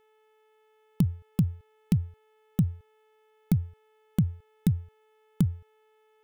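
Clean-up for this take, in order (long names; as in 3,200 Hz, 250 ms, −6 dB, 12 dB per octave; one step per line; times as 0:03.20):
hum removal 433.7 Hz, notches 8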